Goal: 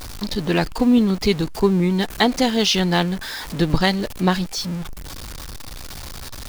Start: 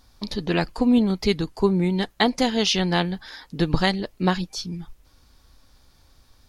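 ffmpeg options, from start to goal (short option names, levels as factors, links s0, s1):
-af "aeval=exprs='val(0)+0.5*0.0316*sgn(val(0))':c=same,volume=1.26"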